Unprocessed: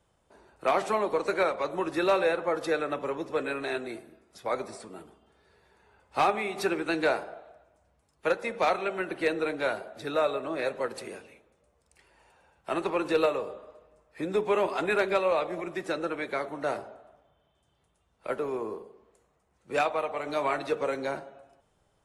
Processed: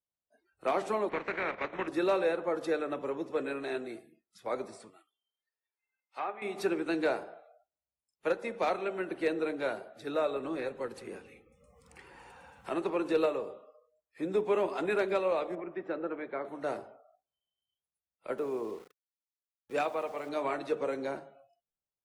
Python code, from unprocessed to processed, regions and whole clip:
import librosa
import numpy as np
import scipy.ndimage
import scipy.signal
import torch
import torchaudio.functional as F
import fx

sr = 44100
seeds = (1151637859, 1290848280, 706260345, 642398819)

y = fx.spec_flatten(x, sr, power=0.54, at=(1.08, 1.87), fade=0.02)
y = fx.lowpass_res(y, sr, hz=2100.0, q=2.5, at=(1.08, 1.87), fade=0.02)
y = fx.level_steps(y, sr, step_db=9, at=(1.08, 1.87), fade=0.02)
y = fx.chain(y, sr, fx.highpass(hz=1400.0, slope=6),
    fx.env_lowpass_down(base_hz=1800.0, full_db=-30.0),
    fx.high_shelf(hz=5000.0, db=-6.5), at=(4.9, 6.42))
y = fx.chain(y, sr, fx.low_shelf(hz=110.0, db=9.5),
    fx.notch(hz=630.0, q=7.1),
    fx.band_squash(depth_pct=70), at=(10.36, 12.7))
y = fx.chain(y, sr, fx.lowpass(hz=1900.0, slope=12),
    fx.peak_eq(hz=100.0, db=-4.0, octaves=2.7), at=(15.55, 16.45))
y = fx.chain(y, sr, fx.highpass(hz=48.0, slope=6),
    fx.sample_gate(floor_db=-45.5), at=(18.38, 20.29))
y = fx.dynamic_eq(y, sr, hz=310.0, q=0.72, threshold_db=-39.0, ratio=4.0, max_db=6)
y = fx.hum_notches(y, sr, base_hz=50, count=3)
y = fx.noise_reduce_blind(y, sr, reduce_db=26)
y = y * 10.0 ** (-7.0 / 20.0)